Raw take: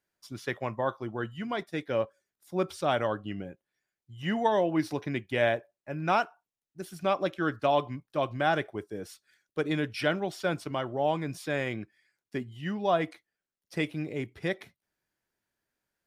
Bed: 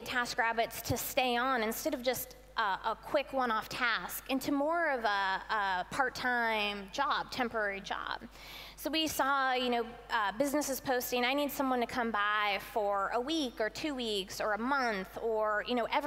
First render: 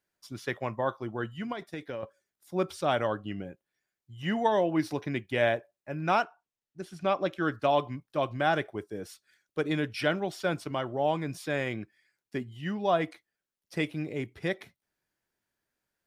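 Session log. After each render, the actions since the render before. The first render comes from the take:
0:01.52–0:02.03: downward compressor 12 to 1, threshold −32 dBFS
0:06.22–0:07.31: high-frequency loss of the air 53 metres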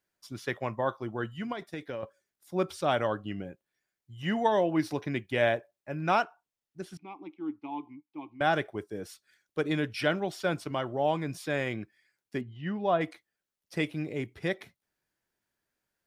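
0:06.97–0:08.41: formant filter u
0:12.41–0:13.01: high-frequency loss of the air 230 metres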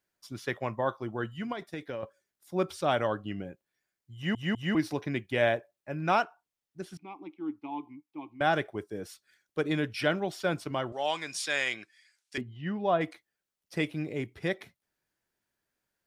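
0:04.15: stutter in place 0.20 s, 3 plays
0:10.92–0:12.38: meter weighting curve ITU-R 468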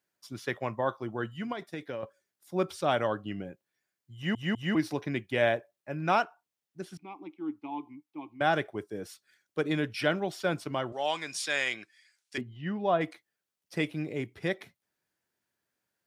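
high-pass filter 86 Hz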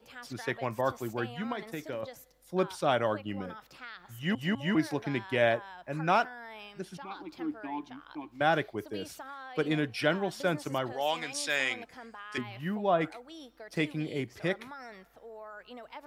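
mix in bed −14.5 dB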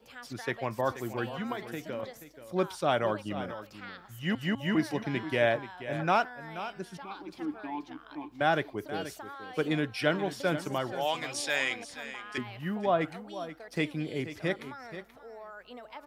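single-tap delay 481 ms −12.5 dB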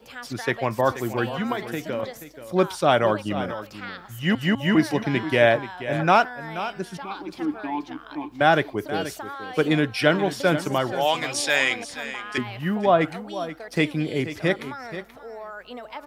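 level +8.5 dB
brickwall limiter −3 dBFS, peak gain reduction 0.5 dB

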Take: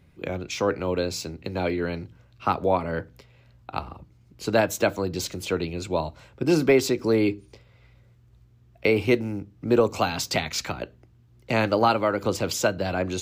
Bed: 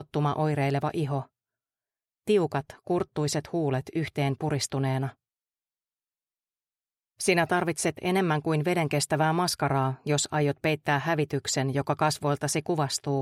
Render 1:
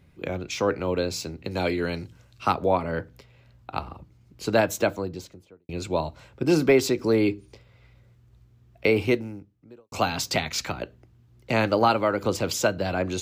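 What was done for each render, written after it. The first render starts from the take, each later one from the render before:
0:01.51–0:02.52: parametric band 8,500 Hz +11 dB 2 octaves
0:04.66–0:05.69: fade out and dull
0:09.03–0:09.92: fade out quadratic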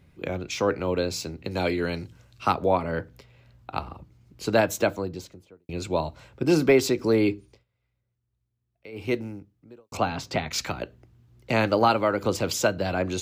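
0:07.34–0:09.24: duck −22.5 dB, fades 0.32 s
0:09.97–0:10.51: low-pass filter 1,700 Hz 6 dB per octave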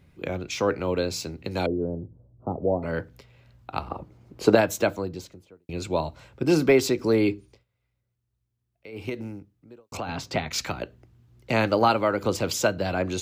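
0:01.66–0:02.83: inverse Chebyshev low-pass filter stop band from 2,200 Hz, stop band 60 dB
0:03.90–0:04.55: parametric band 570 Hz +12.5 dB 2.9 octaves
0:09.09–0:10.09: downward compressor, threshold −27 dBFS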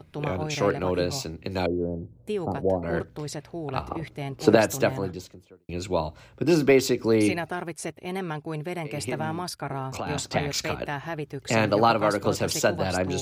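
mix in bed −6.5 dB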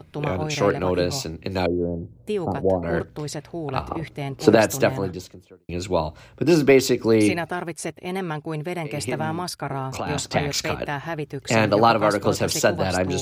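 level +3.5 dB
brickwall limiter −1 dBFS, peak gain reduction 2 dB

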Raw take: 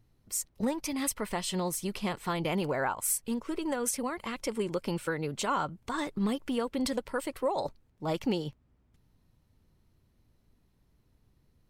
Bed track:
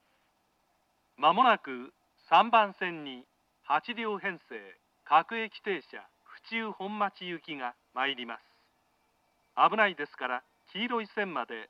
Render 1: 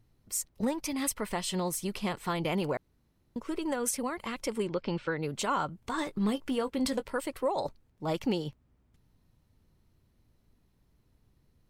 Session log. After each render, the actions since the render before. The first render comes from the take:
0:02.77–0:03.36: fill with room tone
0:04.67–0:05.23: low-pass filter 4,700 Hz 24 dB per octave
0:05.81–0:07.16: double-tracking delay 19 ms −11.5 dB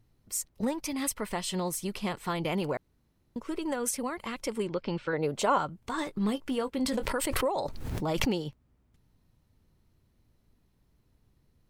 0:05.13–0:05.58: parametric band 610 Hz +9 dB 1.4 octaves
0:06.88–0:08.42: background raised ahead of every attack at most 24 dB per second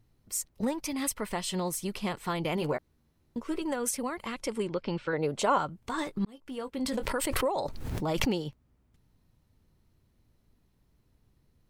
0:02.55–0:03.62: double-tracking delay 13 ms −7.5 dB
0:04.35–0:05.46: low-pass filter 12,000 Hz 24 dB per octave
0:06.25–0:07.32: fade in equal-power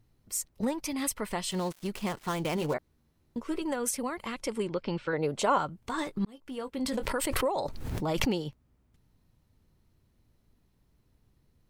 0:01.51–0:02.74: gap after every zero crossing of 0.098 ms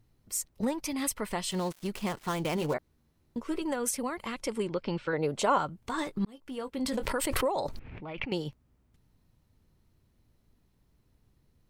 0:07.79–0:08.32: transistor ladder low-pass 2,700 Hz, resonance 65%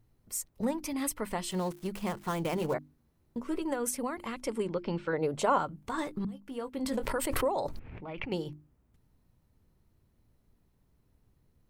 parametric band 4,200 Hz −5 dB 2.3 octaves
mains-hum notches 50/100/150/200/250/300/350 Hz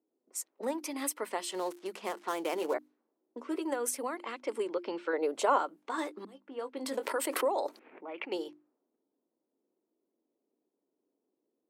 low-pass that shuts in the quiet parts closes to 450 Hz, open at −31 dBFS
Butterworth high-pass 290 Hz 36 dB per octave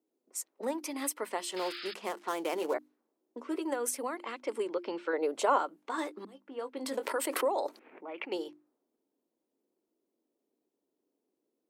0:01.56–0:01.94: sound drawn into the spectrogram noise 1,200–5,200 Hz −43 dBFS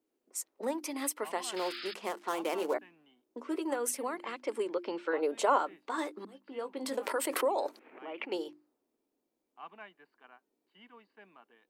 mix in bed track −24.5 dB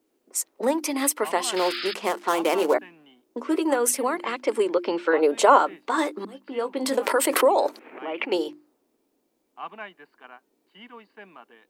level +11 dB

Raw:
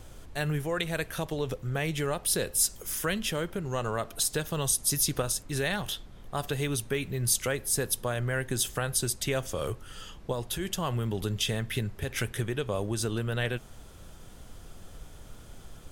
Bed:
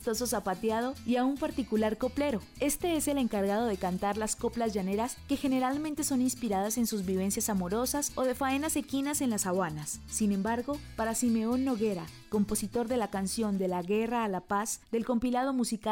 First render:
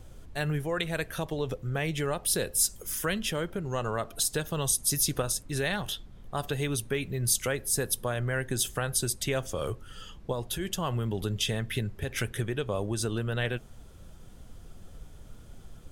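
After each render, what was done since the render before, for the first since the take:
broadband denoise 6 dB, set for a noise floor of −48 dBFS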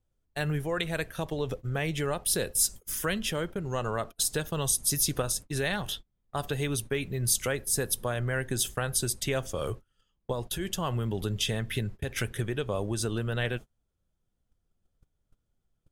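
noise gate −37 dBFS, range −30 dB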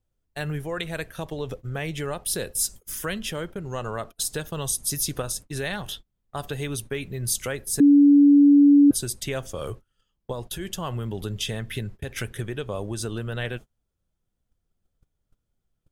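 0:07.80–0:08.91: beep over 286 Hz −10.5 dBFS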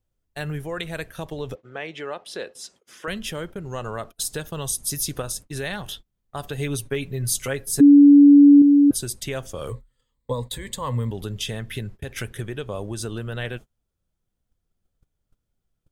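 0:01.55–0:03.08: band-pass filter 340–3,700 Hz
0:06.57–0:08.62: comb filter 7.3 ms, depth 64%
0:09.69–0:11.11: EQ curve with evenly spaced ripples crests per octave 1, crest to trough 14 dB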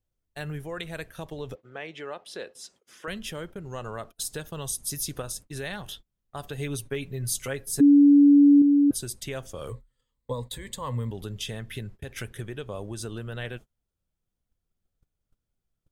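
level −5 dB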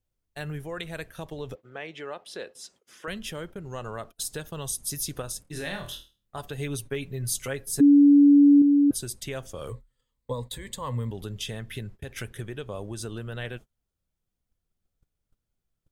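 0:05.42–0:06.41: flutter between parallel walls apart 4.4 metres, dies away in 0.32 s

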